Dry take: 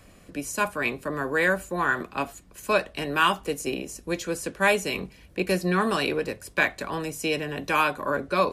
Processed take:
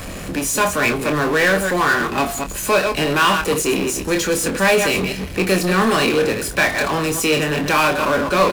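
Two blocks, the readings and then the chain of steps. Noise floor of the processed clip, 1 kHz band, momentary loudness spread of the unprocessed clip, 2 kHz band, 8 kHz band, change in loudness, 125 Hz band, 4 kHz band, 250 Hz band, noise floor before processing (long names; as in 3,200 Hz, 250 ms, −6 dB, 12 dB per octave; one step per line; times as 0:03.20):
−30 dBFS, +7.5 dB, 10 LU, +7.5 dB, +14.0 dB, +8.5 dB, +10.0 dB, +10.5 dB, +9.5 dB, −53 dBFS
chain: delay that plays each chunk backwards 122 ms, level −10 dB
power curve on the samples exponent 0.5
double-tracking delay 26 ms −8 dB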